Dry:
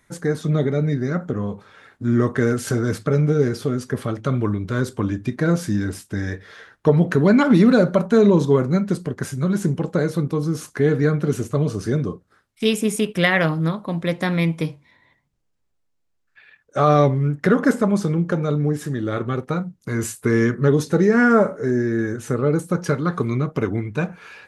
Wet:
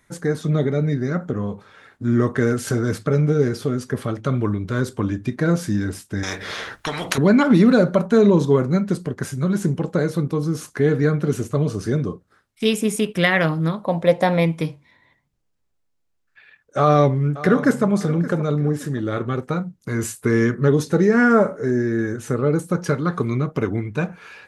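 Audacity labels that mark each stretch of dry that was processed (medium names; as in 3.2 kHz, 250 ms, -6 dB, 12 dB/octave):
6.230000	7.180000	spectrum-flattening compressor 4:1
13.850000	14.460000	high-order bell 660 Hz +10 dB 1.2 oct
16.780000	17.860000	echo throw 570 ms, feedback 35%, level -15.5 dB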